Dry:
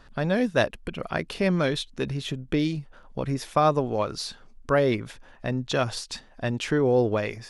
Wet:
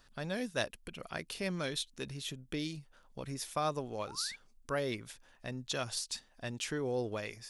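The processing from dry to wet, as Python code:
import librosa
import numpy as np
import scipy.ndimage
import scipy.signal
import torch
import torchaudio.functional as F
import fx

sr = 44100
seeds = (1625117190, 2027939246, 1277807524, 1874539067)

y = fx.spec_paint(x, sr, seeds[0], shape='rise', start_s=4.07, length_s=0.29, low_hz=740.0, high_hz=2400.0, level_db=-38.0)
y = librosa.effects.preemphasis(y, coef=0.8, zi=[0.0])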